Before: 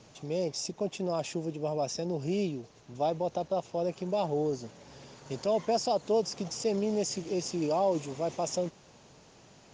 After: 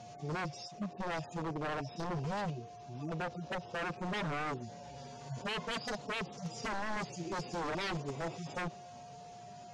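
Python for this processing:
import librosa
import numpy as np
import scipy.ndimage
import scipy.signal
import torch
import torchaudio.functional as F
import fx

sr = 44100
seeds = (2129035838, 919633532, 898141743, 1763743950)

p1 = fx.hpss_only(x, sr, part='harmonic')
p2 = p1 + 10.0 ** (-53.0 / 20.0) * np.sin(2.0 * np.pi * 710.0 * np.arange(len(p1)) / sr)
p3 = fx.level_steps(p2, sr, step_db=19)
p4 = p2 + F.gain(torch.from_numpy(p3), -2.5).numpy()
p5 = 10.0 ** (-31.5 / 20.0) * (np.abs((p4 / 10.0 ** (-31.5 / 20.0) + 3.0) % 4.0 - 2.0) - 1.0)
y = fx.env_lowpass_down(p5, sr, base_hz=2300.0, full_db=-26.0)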